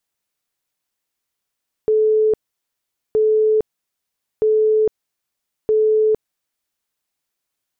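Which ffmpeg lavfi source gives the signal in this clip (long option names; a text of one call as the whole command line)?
ffmpeg -f lavfi -i "aevalsrc='0.251*sin(2*PI*433*mod(t,1.27))*lt(mod(t,1.27),198/433)':duration=5.08:sample_rate=44100" out.wav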